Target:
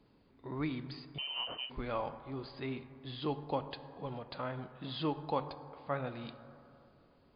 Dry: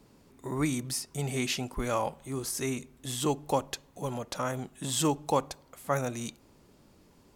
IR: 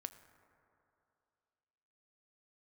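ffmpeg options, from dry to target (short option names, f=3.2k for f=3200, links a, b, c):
-filter_complex "[1:a]atrim=start_sample=2205[a];[0:a][a]afir=irnorm=-1:irlink=0,asettb=1/sr,asplit=3[b][c][d];[b]atrim=end=1.184[e];[c]atrim=start=1.18:end=1.7,asetpts=PTS-STARTPTS,afade=t=in:d=0.004:c=qsin,afade=t=out:st=0.516:d=0.004:c=qsin,lowpass=f=2.7k:t=q:w=0.5098,lowpass=f=2.7k:t=q:w=0.6013,lowpass=f=2.7k:t=q:w=0.9,lowpass=f=2.7k:t=q:w=2.563,afreqshift=-3200[f];[d]atrim=start=1.696[g];[e][f]acrossfade=d=0.004:c1=hsin:c2=qsin[h];[h][g]acrossfade=d=0.004:c1=qsin:c2=hsin,volume=-2.5dB" -ar 11025 -c:a libmp3lame -b:a 32k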